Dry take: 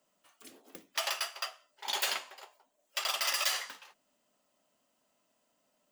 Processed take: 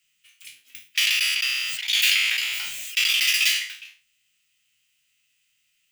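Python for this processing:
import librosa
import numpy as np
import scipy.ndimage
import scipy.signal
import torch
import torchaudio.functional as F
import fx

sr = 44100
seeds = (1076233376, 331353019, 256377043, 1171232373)

y = fx.spec_trails(x, sr, decay_s=0.35)
y = fx.curve_eq(y, sr, hz=(120.0, 250.0, 470.0, 910.0, 2400.0, 4400.0), db=(0, -23, -29, -27, 12, 3))
y = fx.sustainer(y, sr, db_per_s=21.0, at=(1.0, 3.3), fade=0.02)
y = y * librosa.db_to_amplitude(3.5)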